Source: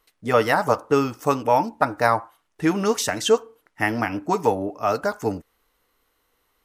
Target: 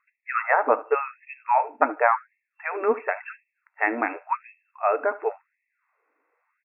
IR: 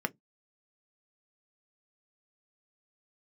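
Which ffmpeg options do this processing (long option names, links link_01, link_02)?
-af "aecho=1:1:74|148:0.112|0.0191,afftfilt=real='re*between(b*sr/4096,150,2700)':imag='im*between(b*sr/4096,150,2700)':win_size=4096:overlap=0.75,afftfilt=real='re*gte(b*sr/1024,230*pow(1800/230,0.5+0.5*sin(2*PI*0.92*pts/sr)))':imag='im*gte(b*sr/1024,230*pow(1800/230,0.5+0.5*sin(2*PI*0.92*pts/sr)))':win_size=1024:overlap=0.75"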